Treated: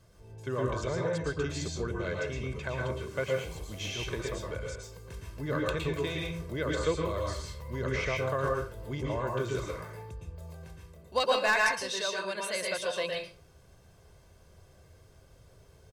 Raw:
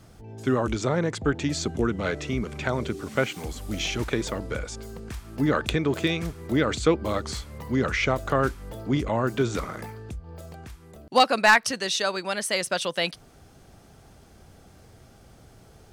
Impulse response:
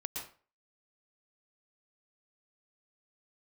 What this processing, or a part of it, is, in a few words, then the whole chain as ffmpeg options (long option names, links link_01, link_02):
microphone above a desk: -filter_complex "[0:a]aecho=1:1:1.9:0.58[link_01];[1:a]atrim=start_sample=2205[link_02];[link_01][link_02]afir=irnorm=-1:irlink=0,volume=-8dB"